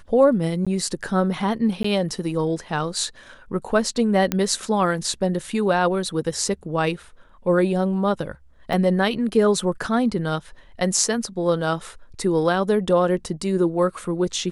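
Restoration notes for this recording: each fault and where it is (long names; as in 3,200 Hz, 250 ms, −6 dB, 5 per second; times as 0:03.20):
0:00.65–0:00.67: drop-out 16 ms
0:01.83–0:01.84: drop-out 14 ms
0:04.32: click −7 dBFS
0:08.73: drop-out 3.4 ms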